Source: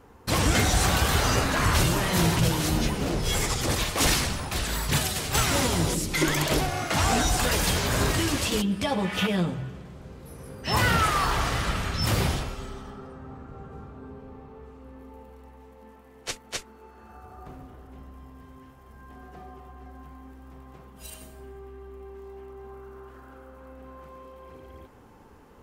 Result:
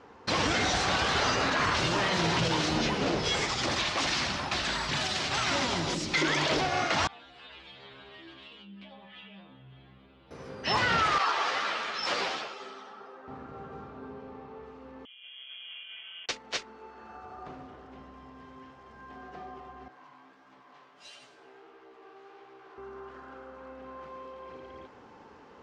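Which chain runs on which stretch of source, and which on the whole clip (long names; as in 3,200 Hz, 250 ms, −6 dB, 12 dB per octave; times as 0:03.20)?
0:03.45–0:06.14: parametric band 460 Hz −9.5 dB 0.22 octaves + downward compressor 3 to 1, threshold −25 dBFS
0:07.07–0:10.31: high shelf with overshoot 4,500 Hz −10 dB, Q 3 + downward compressor 5 to 1, threshold −39 dBFS + stiff-string resonator 65 Hz, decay 0.61 s, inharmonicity 0.002
0:11.18–0:13.28: high-pass filter 410 Hz + high-shelf EQ 12,000 Hz −7.5 dB + string-ensemble chorus
0:15.05–0:16.29: compressor whose output falls as the input rises −50 dBFS, ratio −0.5 + voice inversion scrambler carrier 3,300 Hz
0:19.88–0:22.78: lower of the sound and its delayed copy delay 6.9 ms + low-shelf EQ 470 Hz −12 dB + chorus effect 1.5 Hz, delay 15.5 ms, depth 7.9 ms
whole clip: high-pass filter 360 Hz 6 dB per octave; brickwall limiter −20.5 dBFS; low-pass filter 5,600 Hz 24 dB per octave; level +3.5 dB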